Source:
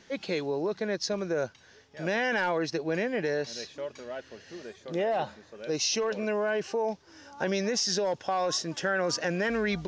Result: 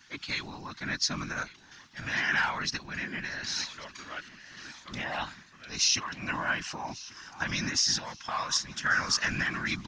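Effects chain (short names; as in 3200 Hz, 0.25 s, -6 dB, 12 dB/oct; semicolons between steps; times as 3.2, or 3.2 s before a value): EQ curve 260 Hz 0 dB, 400 Hz -26 dB, 1100 Hz +7 dB; whisperiser; random-step tremolo; feedback echo 1.141 s, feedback 39%, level -19.5 dB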